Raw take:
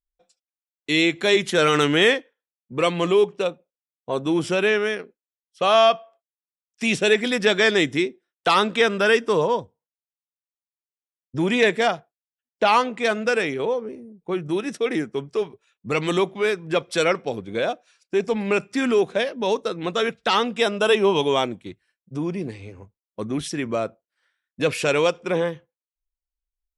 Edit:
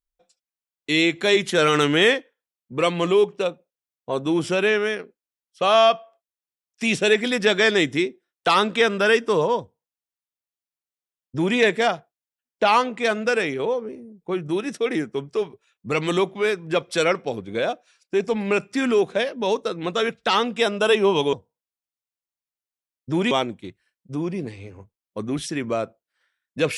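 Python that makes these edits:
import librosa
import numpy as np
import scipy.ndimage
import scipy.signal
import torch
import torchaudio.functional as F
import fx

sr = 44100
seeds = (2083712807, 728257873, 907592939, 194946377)

y = fx.edit(x, sr, fx.duplicate(start_s=9.59, length_s=1.98, to_s=21.33), tone=tone)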